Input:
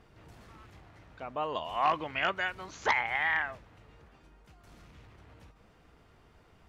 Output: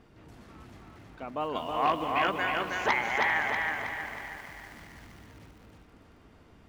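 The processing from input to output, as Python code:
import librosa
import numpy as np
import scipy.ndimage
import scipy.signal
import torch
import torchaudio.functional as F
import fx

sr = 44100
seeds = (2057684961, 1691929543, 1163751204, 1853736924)

y = fx.peak_eq(x, sr, hz=260.0, db=7.0, octaves=1.0)
y = fx.echo_feedback(y, sr, ms=319, feedback_pct=46, wet_db=-3.0)
y = fx.echo_crushed(y, sr, ms=196, feedback_pct=80, bits=8, wet_db=-13.0)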